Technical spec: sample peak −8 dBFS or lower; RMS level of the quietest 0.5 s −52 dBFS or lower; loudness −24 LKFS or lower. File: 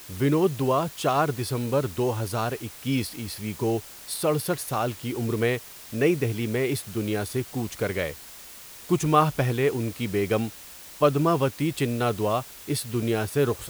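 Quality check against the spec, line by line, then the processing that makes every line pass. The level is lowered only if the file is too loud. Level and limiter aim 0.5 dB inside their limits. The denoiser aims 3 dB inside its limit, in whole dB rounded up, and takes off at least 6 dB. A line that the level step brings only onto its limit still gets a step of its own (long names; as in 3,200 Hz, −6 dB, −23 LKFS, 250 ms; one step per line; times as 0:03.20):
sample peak −5.5 dBFS: out of spec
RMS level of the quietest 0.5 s −44 dBFS: out of spec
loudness −26.0 LKFS: in spec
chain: broadband denoise 11 dB, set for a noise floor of −44 dBFS
brickwall limiter −8.5 dBFS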